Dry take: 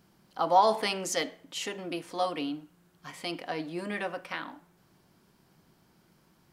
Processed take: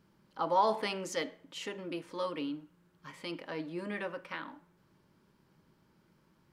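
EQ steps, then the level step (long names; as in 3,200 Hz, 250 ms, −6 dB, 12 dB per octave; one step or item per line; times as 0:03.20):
Butterworth band-reject 720 Hz, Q 6
high-shelf EQ 4,200 Hz −9.5 dB
−3.0 dB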